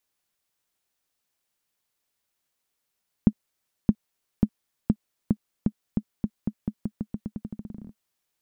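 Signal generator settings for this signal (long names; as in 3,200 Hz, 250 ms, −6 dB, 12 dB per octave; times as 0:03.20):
bouncing ball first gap 0.62 s, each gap 0.87, 212 Hz, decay 60 ms −5 dBFS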